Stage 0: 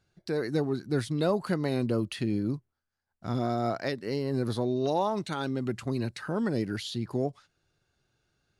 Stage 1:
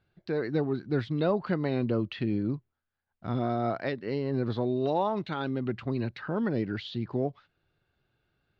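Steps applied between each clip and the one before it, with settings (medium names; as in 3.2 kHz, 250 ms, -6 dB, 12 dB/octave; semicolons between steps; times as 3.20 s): low-pass 3.7 kHz 24 dB/octave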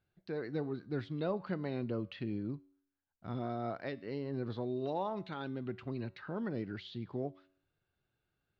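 feedback comb 94 Hz, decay 0.61 s, harmonics all, mix 40%; trim -5 dB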